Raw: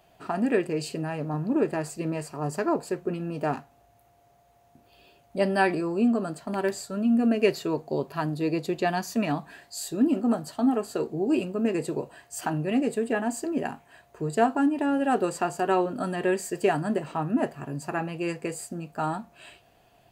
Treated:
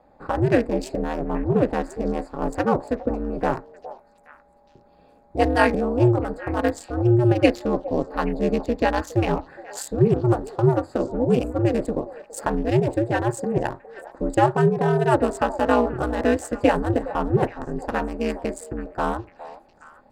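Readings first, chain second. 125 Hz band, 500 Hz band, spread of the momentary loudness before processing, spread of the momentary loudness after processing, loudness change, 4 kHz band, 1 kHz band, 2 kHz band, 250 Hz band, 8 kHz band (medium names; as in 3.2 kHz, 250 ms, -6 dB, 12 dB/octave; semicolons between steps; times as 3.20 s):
+10.5 dB, +6.0 dB, 10 LU, 11 LU, +4.5 dB, +2.0 dB, +5.0 dB, +4.0 dB, +2.0 dB, -1.0 dB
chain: local Wiener filter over 15 samples; ring modulator 120 Hz; repeats whose band climbs or falls 413 ms, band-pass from 650 Hz, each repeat 1.4 oct, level -12 dB; trim +8 dB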